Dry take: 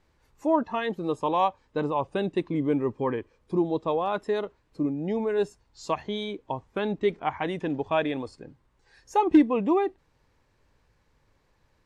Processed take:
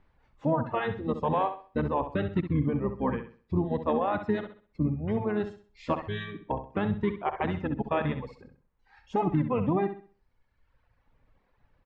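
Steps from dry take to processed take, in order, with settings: harmony voices -12 st -2 dB, -4 st -11 dB; low-pass 2.6 kHz 12 dB/octave; peaking EQ 360 Hz -4.5 dB 0.8 oct; peak limiter -16.5 dBFS, peak gain reduction 11.5 dB; reverb removal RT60 1.3 s; on a send: flutter echo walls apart 11.2 m, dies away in 0.4 s

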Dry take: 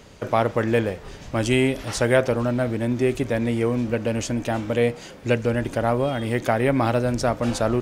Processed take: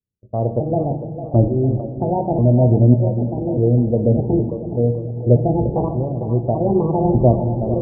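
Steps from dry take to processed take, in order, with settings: pitch shift switched off and on +6 st, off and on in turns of 595 ms; tremolo saw up 0.68 Hz, depth 80%; gate -34 dBFS, range -39 dB; inverse Chebyshev low-pass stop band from 2.3 kHz, stop band 60 dB; spectral gate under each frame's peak -30 dB strong; peaking EQ 96 Hz +5 dB 1.7 oct; level-controlled noise filter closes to 300 Hz, open at -19.5 dBFS; two-band feedback delay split 340 Hz, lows 328 ms, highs 451 ms, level -10 dB; on a send at -8.5 dB: reverberation RT60 1.2 s, pre-delay 4 ms; on the sum: trim +8 dB

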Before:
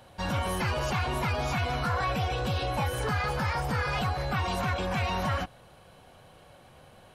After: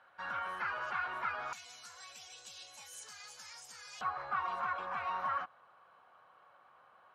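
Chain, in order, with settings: band-pass filter 1.4 kHz, Q 3.8, from 1.53 s 6.8 kHz, from 4.01 s 1.2 kHz; trim +2 dB

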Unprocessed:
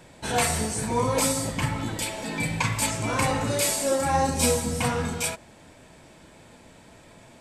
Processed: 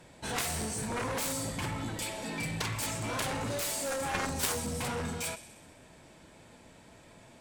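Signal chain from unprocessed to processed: feedback echo behind a high-pass 64 ms, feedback 69%, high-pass 2.1 kHz, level -16 dB; Chebyshev shaper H 3 -7 dB, 7 -25 dB, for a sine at -9.5 dBFS; trim -2 dB

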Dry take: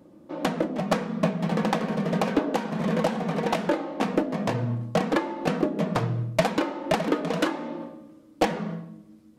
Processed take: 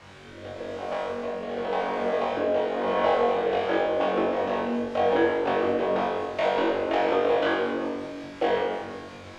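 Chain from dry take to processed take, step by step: fade-in on the opening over 2.91 s; high-pass 400 Hz 24 dB/octave; peaking EQ 3.1 kHz +6 dB 0.61 oct; in parallel at -7 dB: word length cut 6-bit, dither triangular; on the sum: rotary cabinet horn 0.9 Hz, later 5.5 Hz, at 3.27 s; power-law waveshaper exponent 0.7; tape spacing loss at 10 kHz 34 dB; flutter echo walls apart 3.6 m, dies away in 0.57 s; reverberation RT60 1.3 s, pre-delay 3 ms, DRR -0.5 dB; trim -6 dB

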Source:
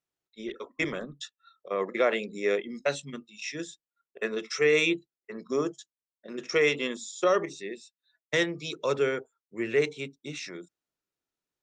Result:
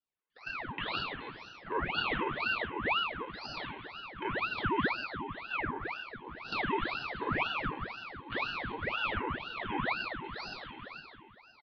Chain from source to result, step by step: spectrogram pixelated in time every 50 ms; LPC vocoder at 8 kHz pitch kept; level held to a coarse grid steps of 18 dB; comb 1.9 ms, depth 94%; delay 1075 ms -24 dB; low-pass that closes with the level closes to 2.1 kHz, closed at -34.5 dBFS; compression 2:1, threshold -47 dBFS, peak gain reduction 10.5 dB; mistuned SSB +200 Hz 250–2900 Hz; reverberation RT60 2.0 s, pre-delay 9 ms, DRR -5 dB; ring modulator with a swept carrier 1.2 kHz, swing 80%, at 2 Hz; trim +8 dB

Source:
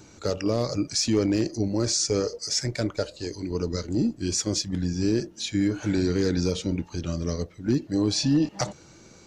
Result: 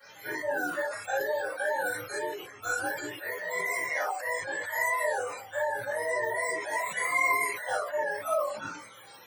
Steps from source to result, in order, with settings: spectrum inverted on a logarithmic axis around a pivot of 420 Hz; dynamic bell 610 Hz, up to +7 dB, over -40 dBFS, Q 5.7; compression 2.5:1, threshold -35 dBFS, peak gain reduction 13.5 dB; chorus voices 6, 0.67 Hz, delay 15 ms, depth 4 ms; differentiator; reverberation, pre-delay 4 ms, DRR -13 dB; decay stretcher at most 66 dB/s; trim +8.5 dB

